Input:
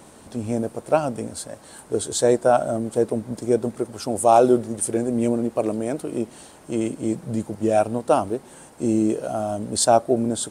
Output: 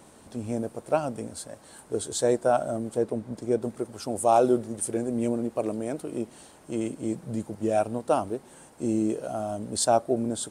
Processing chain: 2.96–3.62 high shelf 6700 Hz -7.5 dB; gain -5.5 dB

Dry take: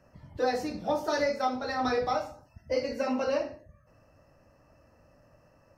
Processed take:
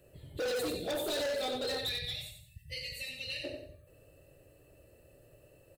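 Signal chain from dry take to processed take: spectral gain 1.78–3.44, 210–1700 Hz -27 dB; EQ curve 140 Hz 0 dB, 220 Hz -10 dB, 400 Hz +9 dB, 1000 Hz -15 dB, 2100 Hz -3 dB, 3800 Hz +14 dB, 5500 Hz -13 dB, 8000 Hz +14 dB; on a send: feedback echo 92 ms, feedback 31%, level -6.5 dB; on the sum: hard clip -31.5 dBFS, distortion -5 dB

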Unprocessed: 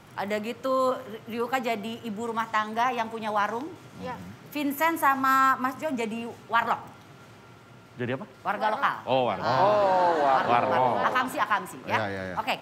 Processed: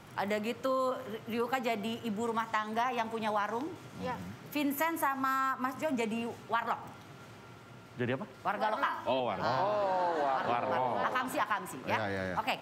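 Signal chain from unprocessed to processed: 8.73–9.2 comb 3.1 ms, depth 94%; compressor 6:1, threshold -26 dBFS, peak gain reduction 9.5 dB; gain -1.5 dB

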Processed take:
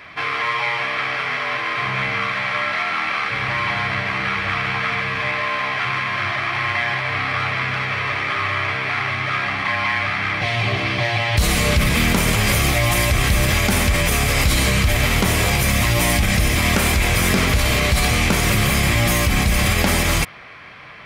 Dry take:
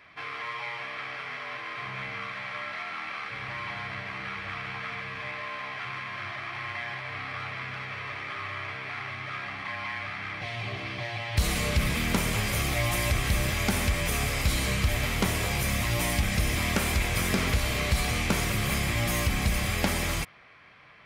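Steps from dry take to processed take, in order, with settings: in parallel at +1 dB: negative-ratio compressor -30 dBFS; on the sum: limiter -13.5 dBFS, peak gain reduction 4 dB; gain +6 dB

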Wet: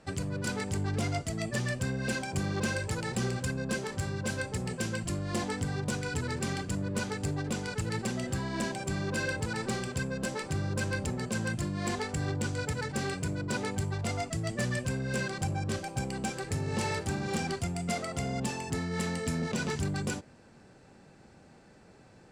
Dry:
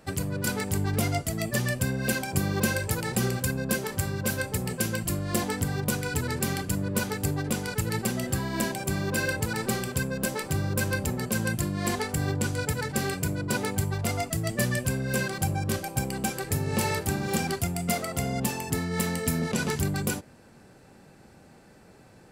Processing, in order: LPF 8400 Hz 24 dB/oct; soft clip -19.5 dBFS, distortion -19 dB; gain -3 dB

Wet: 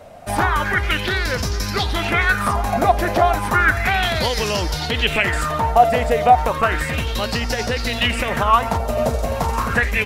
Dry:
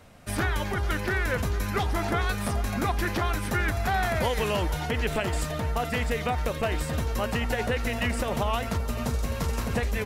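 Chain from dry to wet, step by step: LFO bell 0.33 Hz 620–5300 Hz +16 dB; gain +4.5 dB

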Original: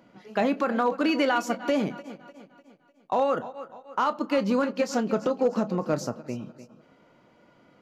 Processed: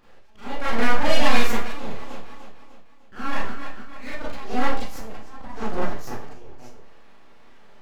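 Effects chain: full-wave rectifier; auto swell 0.4 s; Schroeder reverb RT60 0.36 s, combs from 28 ms, DRR -7.5 dB; gain -1 dB

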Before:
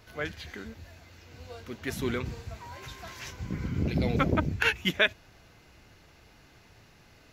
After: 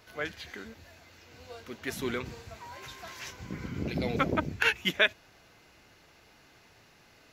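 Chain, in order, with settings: low shelf 160 Hz -11 dB

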